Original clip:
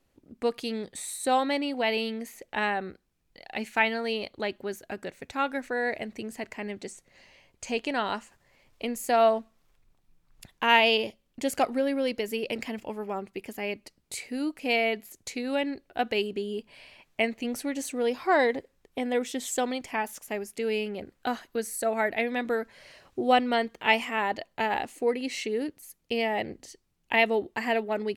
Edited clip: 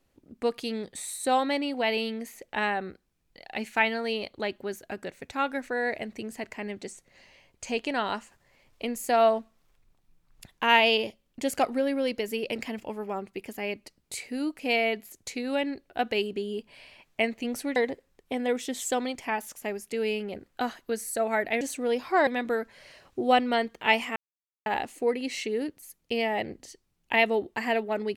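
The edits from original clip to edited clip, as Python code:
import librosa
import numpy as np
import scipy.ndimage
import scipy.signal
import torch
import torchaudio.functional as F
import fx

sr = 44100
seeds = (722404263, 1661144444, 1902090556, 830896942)

y = fx.edit(x, sr, fx.move(start_s=17.76, length_s=0.66, to_s=22.27),
    fx.silence(start_s=24.16, length_s=0.5), tone=tone)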